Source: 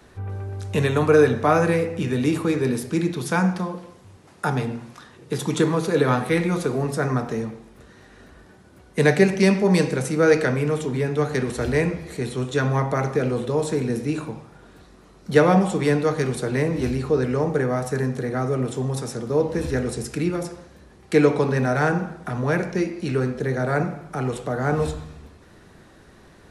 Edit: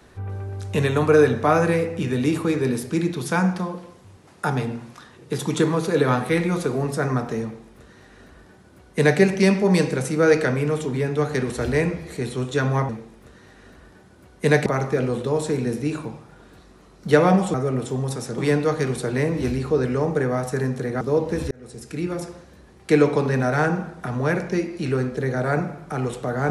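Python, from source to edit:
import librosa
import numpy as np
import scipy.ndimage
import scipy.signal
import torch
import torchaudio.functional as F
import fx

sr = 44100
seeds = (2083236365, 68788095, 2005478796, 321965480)

y = fx.edit(x, sr, fx.duplicate(start_s=7.43, length_s=1.77, to_s=12.89),
    fx.move(start_s=18.4, length_s=0.84, to_s=15.77),
    fx.fade_in_span(start_s=19.74, length_s=0.75), tone=tone)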